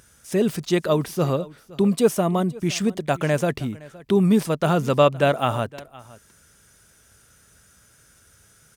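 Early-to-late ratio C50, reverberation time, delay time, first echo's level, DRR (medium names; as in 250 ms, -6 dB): no reverb, no reverb, 516 ms, -21.0 dB, no reverb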